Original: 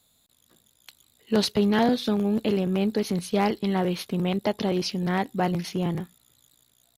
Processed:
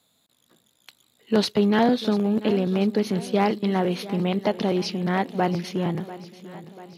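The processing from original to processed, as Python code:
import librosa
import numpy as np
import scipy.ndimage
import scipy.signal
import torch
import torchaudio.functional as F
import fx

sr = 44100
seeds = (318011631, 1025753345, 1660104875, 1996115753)

y = scipy.signal.sosfilt(scipy.signal.butter(2, 140.0, 'highpass', fs=sr, output='sos'), x)
y = fx.high_shelf(y, sr, hz=5800.0, db=-8.5)
y = fx.echo_feedback(y, sr, ms=691, feedback_pct=56, wet_db=-16.0)
y = y * 10.0 ** (2.5 / 20.0)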